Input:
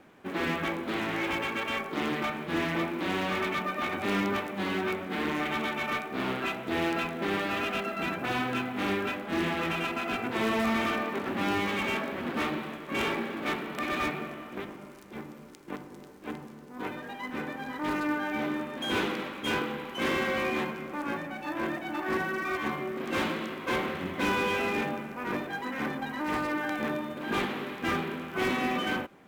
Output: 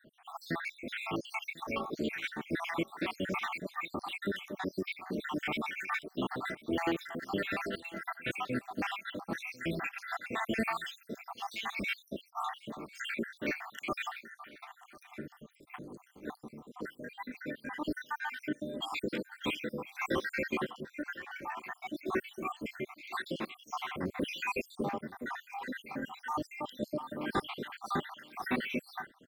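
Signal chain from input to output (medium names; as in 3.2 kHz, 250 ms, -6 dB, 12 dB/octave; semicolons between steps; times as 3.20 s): random holes in the spectrogram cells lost 76%; delay 1047 ms -21 dB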